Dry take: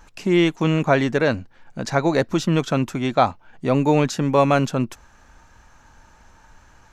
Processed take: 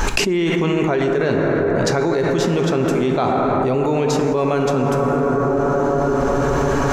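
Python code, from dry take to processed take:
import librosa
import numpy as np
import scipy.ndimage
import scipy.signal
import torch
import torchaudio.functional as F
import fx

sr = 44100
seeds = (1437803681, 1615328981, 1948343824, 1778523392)

y = fx.peak_eq(x, sr, hz=400.0, db=12.0, octaves=0.21)
y = fx.rev_plate(y, sr, seeds[0], rt60_s=4.7, hf_ratio=0.3, predelay_ms=0, drr_db=2.5)
y = fx.env_flatten(y, sr, amount_pct=100)
y = y * librosa.db_to_amplitude(-8.5)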